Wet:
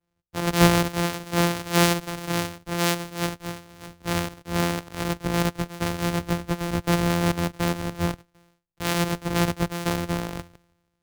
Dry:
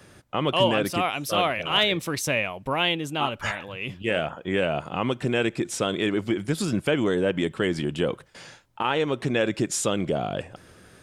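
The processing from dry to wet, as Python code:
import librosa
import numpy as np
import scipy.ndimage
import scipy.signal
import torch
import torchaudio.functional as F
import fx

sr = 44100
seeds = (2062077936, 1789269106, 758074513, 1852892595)

y = np.r_[np.sort(x[:len(x) // 256 * 256].reshape(-1, 256), axis=1).ravel(), x[len(x) // 256 * 256:]]
y = fx.band_widen(y, sr, depth_pct=100)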